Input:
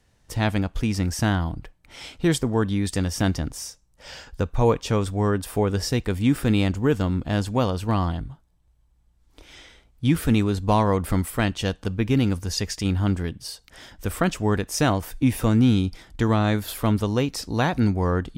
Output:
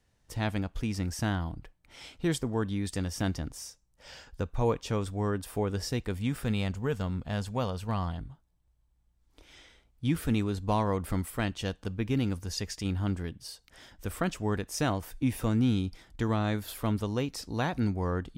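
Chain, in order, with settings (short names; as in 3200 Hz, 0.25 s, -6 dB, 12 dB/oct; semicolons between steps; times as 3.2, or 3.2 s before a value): 6.17–8.18 bell 310 Hz -13 dB 0.29 oct; gain -8 dB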